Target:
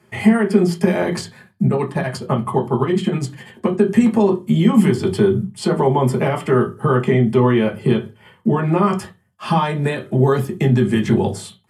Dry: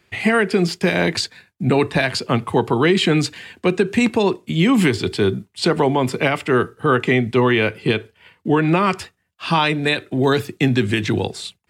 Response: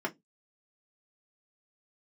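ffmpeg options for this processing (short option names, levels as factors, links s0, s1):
-filter_complex "[0:a]equalizer=f=11000:t=o:w=1.4:g=13,acompressor=threshold=0.0891:ratio=3,asettb=1/sr,asplit=3[s0][s1][s2];[s0]atrim=end=1.654[s3];[s1]atrim=start=1.65:end=3.79,asetpts=PTS-STARTPTS,afade=t=in:d=0.004:c=qsin,afade=t=out:st=2.136:d=0.004:c=qsin,tremolo=f=12:d=0.8[s4];[s2]atrim=start=3.786[s5];[s3][s4]acrossfade=d=0.004:c1=hsin:c2=qsin[s6];[s6][s5]acrossfade=d=0.004:c1=qsin:c2=hsin[s7];[1:a]atrim=start_sample=2205,asetrate=26019,aresample=44100[s8];[s7][s8]afir=irnorm=-1:irlink=0,volume=0.596"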